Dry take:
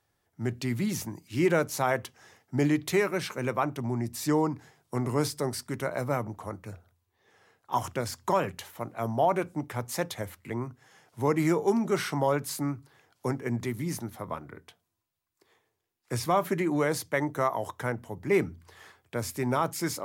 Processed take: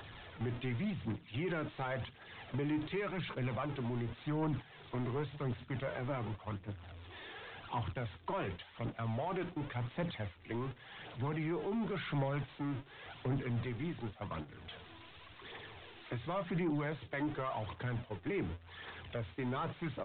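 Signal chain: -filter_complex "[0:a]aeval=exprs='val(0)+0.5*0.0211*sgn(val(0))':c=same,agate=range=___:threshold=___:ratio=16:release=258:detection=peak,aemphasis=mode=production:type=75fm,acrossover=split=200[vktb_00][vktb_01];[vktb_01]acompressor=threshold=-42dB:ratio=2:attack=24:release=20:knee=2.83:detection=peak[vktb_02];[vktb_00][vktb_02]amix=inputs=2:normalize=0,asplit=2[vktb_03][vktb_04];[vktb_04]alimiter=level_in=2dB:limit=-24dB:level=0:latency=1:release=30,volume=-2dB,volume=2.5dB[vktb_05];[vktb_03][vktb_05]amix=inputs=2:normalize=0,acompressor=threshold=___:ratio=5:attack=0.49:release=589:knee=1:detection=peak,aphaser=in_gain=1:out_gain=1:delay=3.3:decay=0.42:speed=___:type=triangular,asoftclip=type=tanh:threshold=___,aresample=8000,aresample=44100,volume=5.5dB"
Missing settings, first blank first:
-23dB, -32dB, -34dB, 0.9, -34.5dB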